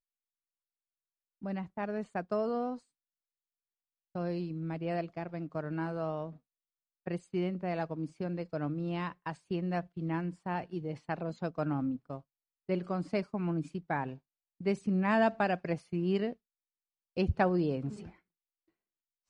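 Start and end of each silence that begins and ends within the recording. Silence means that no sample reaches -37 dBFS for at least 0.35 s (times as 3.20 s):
2.76–4.15 s
6.30–7.07 s
12.18–12.69 s
14.14–14.61 s
16.33–17.17 s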